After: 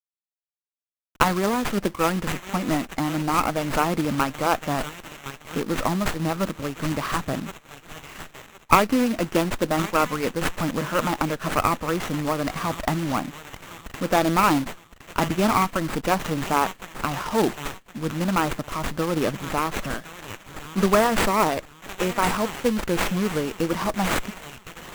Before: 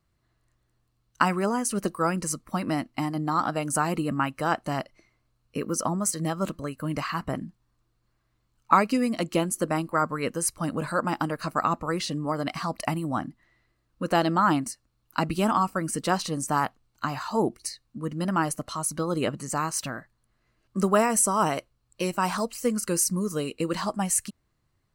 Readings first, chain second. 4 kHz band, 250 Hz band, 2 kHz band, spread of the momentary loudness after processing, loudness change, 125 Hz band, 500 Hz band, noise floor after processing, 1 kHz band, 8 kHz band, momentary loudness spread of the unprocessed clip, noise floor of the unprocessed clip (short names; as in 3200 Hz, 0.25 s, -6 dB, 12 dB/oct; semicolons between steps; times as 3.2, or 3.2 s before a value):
+5.5 dB, +3.0 dB, +5.0 dB, 17 LU, +3.0 dB, +3.0 dB, +4.0 dB, -58 dBFS, +3.0 dB, -4.5 dB, 11 LU, -73 dBFS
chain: companded quantiser 4-bit; thin delay 1.064 s, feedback 32%, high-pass 3200 Hz, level -3.5 dB; running maximum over 9 samples; gain +3.5 dB